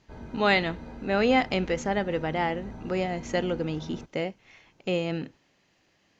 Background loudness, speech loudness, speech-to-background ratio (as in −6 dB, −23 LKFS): −43.0 LKFS, −28.0 LKFS, 15.0 dB